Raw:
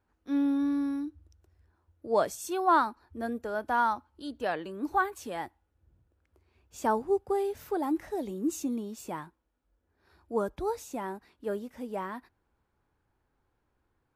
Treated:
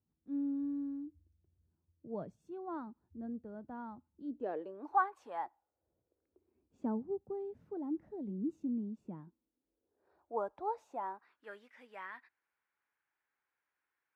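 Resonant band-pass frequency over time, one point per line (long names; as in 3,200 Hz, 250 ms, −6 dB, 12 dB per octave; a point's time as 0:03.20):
resonant band-pass, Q 2.2
0:04.10 160 Hz
0:04.91 930 Hz
0:05.41 930 Hz
0:07.02 190 Hz
0:09.18 190 Hz
0:10.41 800 Hz
0:10.98 800 Hz
0:11.52 2,000 Hz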